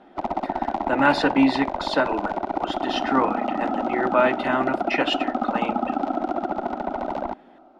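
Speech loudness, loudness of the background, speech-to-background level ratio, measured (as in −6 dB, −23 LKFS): −24.0 LKFS, −27.0 LKFS, 3.0 dB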